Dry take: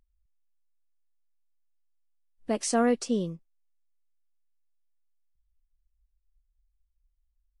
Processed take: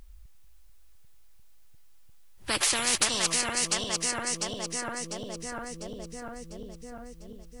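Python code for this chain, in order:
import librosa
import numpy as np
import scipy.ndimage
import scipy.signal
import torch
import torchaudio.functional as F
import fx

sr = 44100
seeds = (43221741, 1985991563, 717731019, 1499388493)

y = fx.reverse_delay_fb(x, sr, ms=349, feedback_pct=67, wet_db=-11.0)
y = fx.spectral_comp(y, sr, ratio=10.0)
y = F.gain(torch.from_numpy(y), 4.5).numpy()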